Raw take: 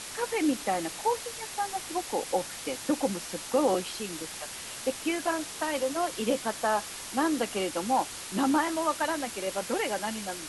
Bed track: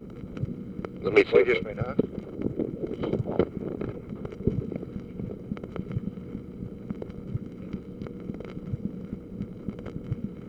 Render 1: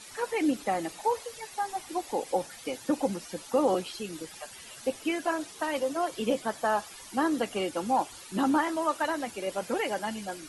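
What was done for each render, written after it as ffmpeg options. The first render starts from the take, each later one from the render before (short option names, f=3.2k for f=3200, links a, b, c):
-af "afftdn=nr=13:nf=-41"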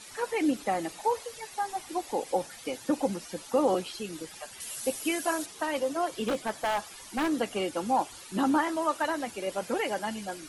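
-filter_complex "[0:a]asettb=1/sr,asplit=3[a][b][c];[a]atrim=end=4.604[d];[b]atrim=start=4.6:end=5.46,asetpts=PTS-STARTPTS,afade=t=in:d=0.004:c=qsin,afade=t=out:st=0.856:d=0.004:c=qsin,aemphasis=mode=production:type=50fm[e];[c]atrim=start=5.456[f];[d][e]acrossfade=d=0.004:c1=hsin:c2=qsin[g];[g][f]acrossfade=d=0.004:c1=qsin:c2=hsin,asettb=1/sr,asplit=3[h][i][j];[h]atrim=end=6.244[k];[i]atrim=start=6.24:end=7.31,asetpts=PTS-STARTPTS,afade=t=in:d=0.004:c=qsin,afade=t=out:st=1.066:d=0.004:c=qsin,aeval=exprs='0.0794*(abs(mod(val(0)/0.0794+3,4)-2)-1)':c=same[l];[j]atrim=start=7.306[m];[k][l]acrossfade=d=0.004:c1=hsin:c2=qsin[n];[n][m]acrossfade=d=0.004:c1=qsin:c2=hsin"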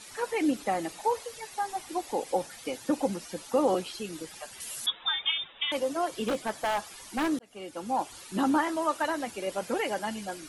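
-filter_complex "[0:a]asettb=1/sr,asplit=3[a][b][c];[a]atrim=end=4.864[d];[b]atrim=start=4.86:end=5.72,asetpts=PTS-STARTPTS,afade=t=in:d=0.004:c=qsin,afade=t=out:st=0.856:d=0.004:c=qsin,lowpass=f=3.3k:t=q:w=0.5098,lowpass=f=3.3k:t=q:w=0.6013,lowpass=f=3.3k:t=q:w=0.9,lowpass=f=3.3k:t=q:w=2.563,afreqshift=-3900[e];[c]atrim=start=5.716[f];[d][e]acrossfade=d=0.004:c1=hsin:c2=qsin[g];[g][f]acrossfade=d=0.004:c1=qsin:c2=hsin,asplit=2[h][i];[h]atrim=end=7.39,asetpts=PTS-STARTPTS,afade=t=out:st=7.386:d=0.004:c=hsin[j];[i]atrim=start=7.39,asetpts=PTS-STARTPTS,afade=t=in:d=0.79[k];[j][k]concat=n=2:v=0:a=1"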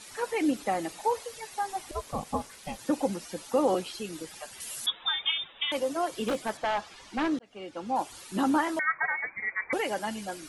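-filter_complex "[0:a]asettb=1/sr,asplit=3[a][b][c];[a]atrim=end=1.914[d];[b]atrim=start=1.91:end=2.79,asetpts=PTS-STARTPTS,afade=t=in:d=0.004:c=qsin,afade=t=out:st=0.876:d=0.004:c=qsin,aeval=exprs='val(0)*sin(2*PI*290*n/s)':c=same[e];[c]atrim=start=2.786[f];[d][e]acrossfade=d=0.004:c1=hsin:c2=qsin[g];[g][f]acrossfade=d=0.004:c1=qsin:c2=hsin,asettb=1/sr,asplit=3[h][i][j];[h]atrim=end=6.574[k];[i]atrim=start=6.57:end=7.96,asetpts=PTS-STARTPTS,afade=t=in:d=0.004:c=qsin,afade=t=out:st=1.386:d=0.004:c=qsin,lowpass=4.9k[l];[j]atrim=start=7.956[m];[k][l]acrossfade=d=0.004:c1=hsin:c2=qsin[n];[n][m]acrossfade=d=0.004:c1=qsin:c2=hsin,asettb=1/sr,asplit=3[o][p][q];[o]atrim=end=8.794[r];[p]atrim=start=8.79:end=9.73,asetpts=PTS-STARTPTS,afade=t=in:d=0.004:c=qsin,afade=t=out:st=0.936:d=0.004:c=qsin,lowpass=f=2.1k:t=q:w=0.5098,lowpass=f=2.1k:t=q:w=0.6013,lowpass=f=2.1k:t=q:w=0.9,lowpass=f=2.1k:t=q:w=2.563,afreqshift=-2500[s];[q]atrim=start=9.726[t];[r][s]acrossfade=d=0.004:c1=hsin:c2=qsin[u];[u][t]acrossfade=d=0.004:c1=qsin:c2=hsin"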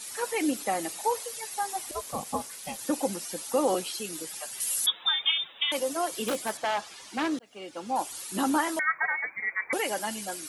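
-af "highpass=f=180:p=1,aemphasis=mode=production:type=50kf"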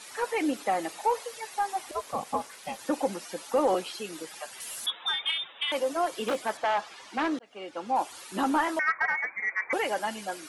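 -filter_complex "[0:a]asplit=2[a][b];[b]highpass=f=720:p=1,volume=11dB,asoftclip=type=tanh:threshold=-13dB[c];[a][c]amix=inputs=2:normalize=0,lowpass=f=1.4k:p=1,volume=-6dB"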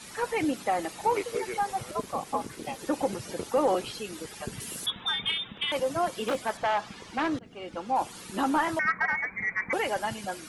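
-filter_complex "[1:a]volume=-13dB[a];[0:a][a]amix=inputs=2:normalize=0"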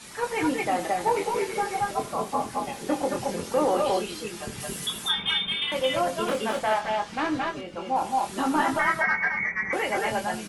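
-filter_complex "[0:a]asplit=2[a][b];[b]adelay=23,volume=-6dB[c];[a][c]amix=inputs=2:normalize=0,aecho=1:1:81|204|219|224:0.188|0.133|0.562|0.631"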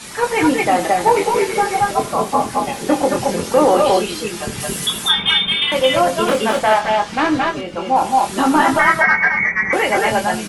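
-af "volume=10.5dB,alimiter=limit=-2dB:level=0:latency=1"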